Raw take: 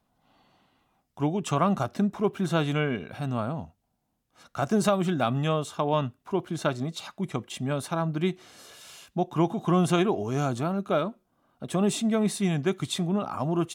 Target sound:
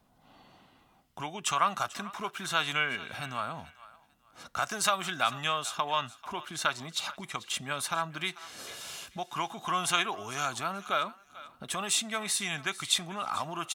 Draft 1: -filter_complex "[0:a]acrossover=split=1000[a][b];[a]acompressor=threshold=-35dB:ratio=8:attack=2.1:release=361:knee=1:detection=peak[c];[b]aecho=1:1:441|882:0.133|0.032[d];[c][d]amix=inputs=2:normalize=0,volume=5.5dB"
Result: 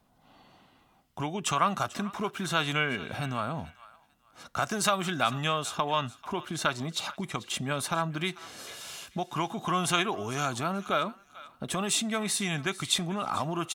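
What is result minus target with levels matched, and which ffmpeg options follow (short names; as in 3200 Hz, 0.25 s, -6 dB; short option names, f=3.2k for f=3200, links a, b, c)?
compressor: peak gain reduction -9.5 dB
-filter_complex "[0:a]acrossover=split=1000[a][b];[a]acompressor=threshold=-46dB:ratio=8:attack=2.1:release=361:knee=1:detection=peak[c];[b]aecho=1:1:441|882:0.133|0.032[d];[c][d]amix=inputs=2:normalize=0,volume=5.5dB"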